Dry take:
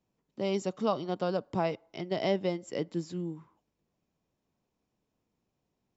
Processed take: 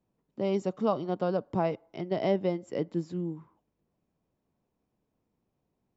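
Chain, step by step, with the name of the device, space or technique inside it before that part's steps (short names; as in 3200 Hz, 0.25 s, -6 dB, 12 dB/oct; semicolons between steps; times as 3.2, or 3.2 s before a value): through cloth (high shelf 2300 Hz -11.5 dB); gain +2.5 dB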